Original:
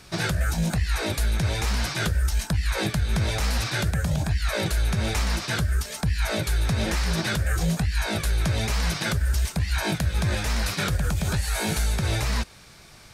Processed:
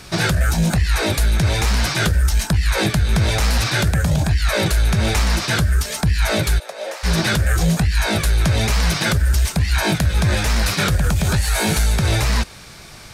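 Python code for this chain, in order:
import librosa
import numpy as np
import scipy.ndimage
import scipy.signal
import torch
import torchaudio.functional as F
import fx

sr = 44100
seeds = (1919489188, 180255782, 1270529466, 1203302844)

p1 = 10.0 ** (-27.5 / 20.0) * np.tanh(x / 10.0 ** (-27.5 / 20.0))
p2 = x + (p1 * 10.0 ** (-4.0 / 20.0))
p3 = fx.ladder_highpass(p2, sr, hz=510.0, resonance_pct=65, at=(6.58, 7.03), fade=0.02)
y = p3 * 10.0 ** (5.0 / 20.0)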